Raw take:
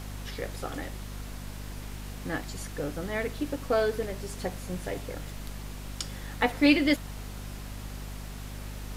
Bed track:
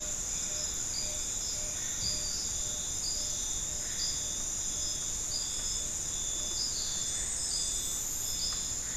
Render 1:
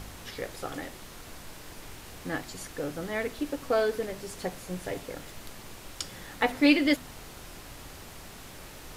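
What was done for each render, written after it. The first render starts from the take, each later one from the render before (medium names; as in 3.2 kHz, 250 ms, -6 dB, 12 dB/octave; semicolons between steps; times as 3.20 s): de-hum 50 Hz, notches 5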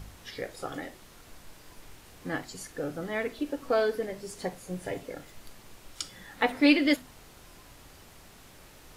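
noise print and reduce 7 dB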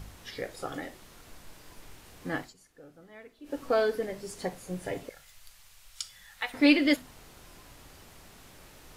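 2.41–3.56 s: dip -18 dB, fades 0.13 s; 5.09–6.54 s: amplifier tone stack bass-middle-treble 10-0-10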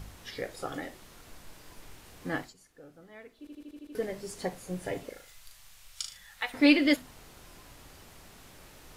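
3.39 s: stutter in place 0.08 s, 7 plays; 5.05–6.17 s: flutter echo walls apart 6.5 m, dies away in 0.37 s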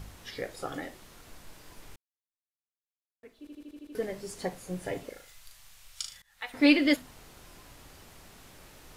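1.96–3.23 s: mute; 6.22–6.65 s: fade in, from -24 dB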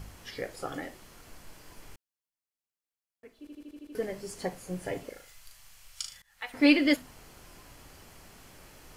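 band-stop 3.7 kHz, Q 11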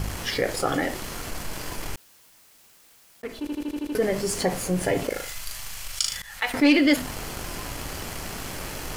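waveshaping leveller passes 1; level flattener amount 50%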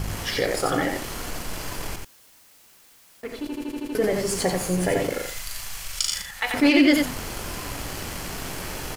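delay 88 ms -4 dB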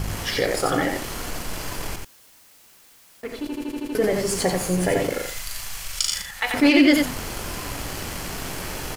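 trim +1.5 dB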